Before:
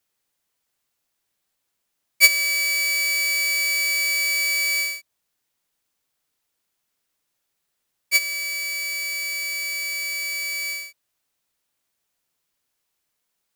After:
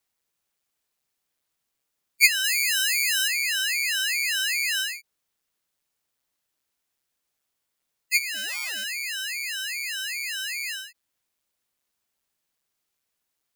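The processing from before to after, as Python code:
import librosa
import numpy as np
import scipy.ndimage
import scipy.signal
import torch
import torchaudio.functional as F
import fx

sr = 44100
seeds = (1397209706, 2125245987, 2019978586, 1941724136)

y = fx.spec_gate(x, sr, threshold_db=-20, keep='strong')
y = fx.high_shelf(y, sr, hz=6600.0, db=7.0, at=(2.44, 3.28))
y = fx.resample_bad(y, sr, factor=3, down='none', up='hold', at=(8.34, 8.84))
y = fx.ring_lfo(y, sr, carrier_hz=410.0, swing_pct=85, hz=2.5)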